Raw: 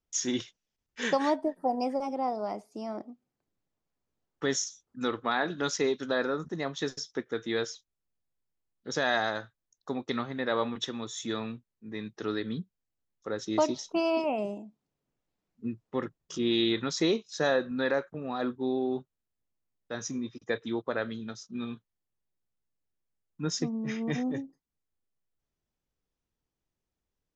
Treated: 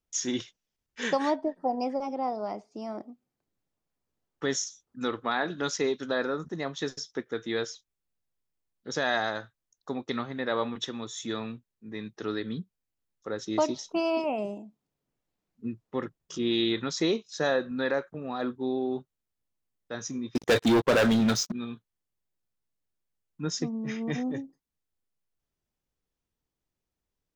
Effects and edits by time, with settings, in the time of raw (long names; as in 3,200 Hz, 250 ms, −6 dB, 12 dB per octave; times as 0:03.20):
0:01.31–0:02.82: low-pass filter 6,400 Hz 24 dB per octave
0:20.35–0:21.52: leveller curve on the samples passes 5